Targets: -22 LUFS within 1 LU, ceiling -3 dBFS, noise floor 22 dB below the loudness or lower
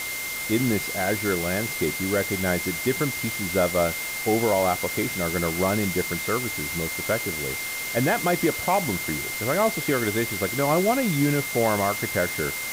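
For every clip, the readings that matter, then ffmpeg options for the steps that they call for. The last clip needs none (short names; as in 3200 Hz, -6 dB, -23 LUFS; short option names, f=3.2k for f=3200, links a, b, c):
steady tone 2100 Hz; tone level -31 dBFS; noise floor -31 dBFS; noise floor target -46 dBFS; loudness -24.0 LUFS; peak -10.5 dBFS; loudness target -22.0 LUFS
-> -af "bandreject=f=2.1k:w=30"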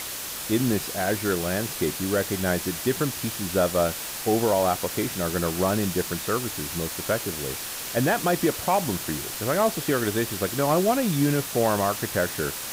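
steady tone none; noise floor -34 dBFS; noise floor target -47 dBFS
-> -af "afftdn=nr=13:nf=-34"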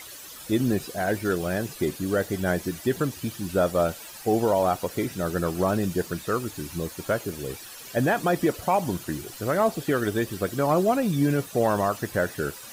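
noise floor -42 dBFS; noise floor target -48 dBFS
-> -af "afftdn=nr=6:nf=-42"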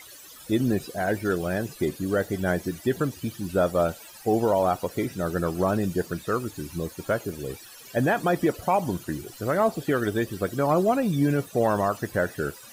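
noise floor -46 dBFS; noise floor target -48 dBFS
-> -af "afftdn=nr=6:nf=-46"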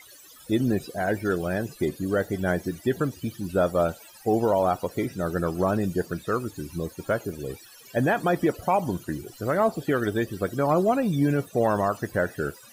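noise floor -50 dBFS; loudness -26.0 LUFS; peak -12.0 dBFS; loudness target -22.0 LUFS
-> -af "volume=4dB"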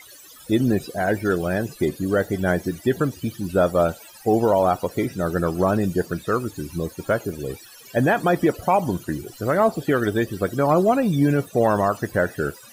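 loudness -22.0 LUFS; peak -8.0 dBFS; noise floor -46 dBFS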